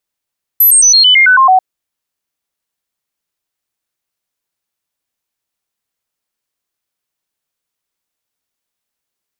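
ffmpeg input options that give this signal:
-f lavfi -i "aevalsrc='0.668*clip(min(mod(t,0.11),0.11-mod(t,0.11))/0.005,0,1)*sin(2*PI*12000*pow(2,-floor(t/0.11)/2)*mod(t,0.11))':d=0.99:s=44100"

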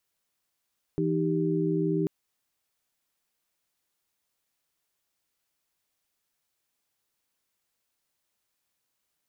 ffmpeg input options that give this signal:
-f lavfi -i "aevalsrc='0.0398*(sin(2*PI*164.81*t)+sin(2*PI*311.13*t)+sin(2*PI*392*t))':d=1.09:s=44100"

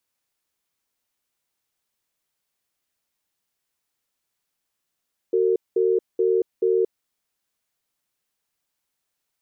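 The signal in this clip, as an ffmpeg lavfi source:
-f lavfi -i "aevalsrc='0.106*(sin(2*PI*374*t)+sin(2*PI*454*t))*clip(min(mod(t,0.43),0.23-mod(t,0.43))/0.005,0,1)':d=1.65:s=44100"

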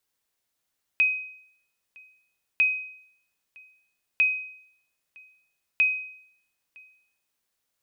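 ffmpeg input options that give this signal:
-f lavfi -i "aevalsrc='0.188*(sin(2*PI*2520*mod(t,1.6))*exp(-6.91*mod(t,1.6)/0.67)+0.0398*sin(2*PI*2520*max(mod(t,1.6)-0.96,0))*exp(-6.91*max(mod(t,1.6)-0.96,0)/0.67))':d=6.4:s=44100"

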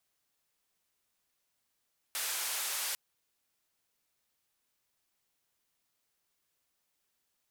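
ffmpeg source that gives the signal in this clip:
-f lavfi -i "anoisesrc=c=white:d=0.8:r=44100:seed=1,highpass=f=760,lowpass=f=14000,volume=-28.4dB"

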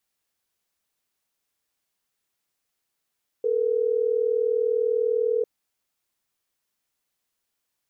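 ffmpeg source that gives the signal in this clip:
-f lavfi -i "aevalsrc='0.0708*(sin(2*PI*440*t)+sin(2*PI*480*t))*clip(min(mod(t,6),2-mod(t,6))/0.005,0,1)':d=3.12:s=44100"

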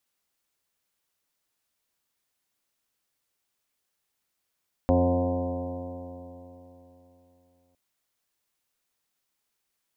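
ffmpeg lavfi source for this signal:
-f lavfi -i "aevalsrc='0.0708*pow(10,-3*t/3.5)*sin(2*PI*87.06*t)+0.0251*pow(10,-3*t/3.5)*sin(2*PI*174.49*t)+0.0794*pow(10,-3*t/3.5)*sin(2*PI*262.64*t)+0.02*pow(10,-3*t/3.5)*sin(2*PI*351.88*t)+0.0178*pow(10,-3*t/3.5)*sin(2*PI*442.55*t)+0.0794*pow(10,-3*t/3.5)*sin(2*PI*534.99*t)+0.02*pow(10,-3*t/3.5)*sin(2*PI*629.54*t)+0.0355*pow(10,-3*t/3.5)*sin(2*PI*726.51*t)+0.0106*pow(10,-3*t/3.5)*sin(2*PI*826.2*t)+0.0119*pow(10,-3*t/3.5)*sin(2*PI*928.91*t)+0.00841*pow(10,-3*t/3.5)*sin(2*PI*1034.89*t)':d=2.86:s=44100"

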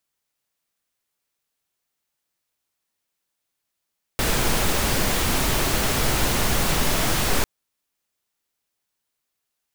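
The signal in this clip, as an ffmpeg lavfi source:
-f lavfi -i "anoisesrc=c=pink:a=0.457:d=3.25:r=44100:seed=1"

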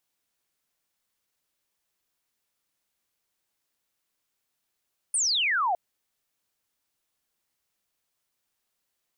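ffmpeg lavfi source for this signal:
-f lavfi -i "aevalsrc='0.0794*clip(t/0.002,0,1)*clip((0.61-t)/0.002,0,1)*sin(2*PI*9600*0.61/log(670/9600)*(exp(log(670/9600)*t/0.61)-1))':d=0.61:s=44100"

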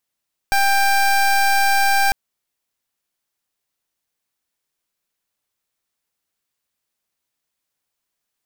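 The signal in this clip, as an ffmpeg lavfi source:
-f lavfi -i "aevalsrc='0.168*(2*lt(mod(792*t,1),0.23)-1)':d=1.6:s=44100"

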